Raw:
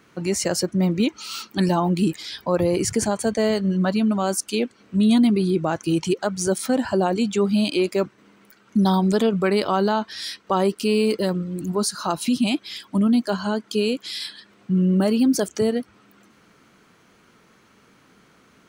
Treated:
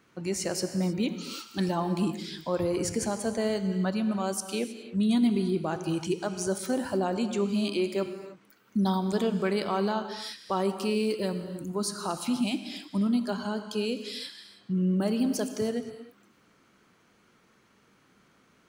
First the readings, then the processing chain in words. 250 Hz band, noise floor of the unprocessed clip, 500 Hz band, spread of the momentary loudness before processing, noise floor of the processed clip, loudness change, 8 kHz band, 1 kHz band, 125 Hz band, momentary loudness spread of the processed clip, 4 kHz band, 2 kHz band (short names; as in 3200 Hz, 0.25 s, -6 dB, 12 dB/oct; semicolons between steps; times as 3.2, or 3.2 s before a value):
-7.5 dB, -57 dBFS, -7.5 dB, 8 LU, -64 dBFS, -7.5 dB, -7.5 dB, -7.5 dB, -7.5 dB, 8 LU, -7.5 dB, -7.5 dB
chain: non-linear reverb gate 0.34 s flat, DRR 8.5 dB; gain -8 dB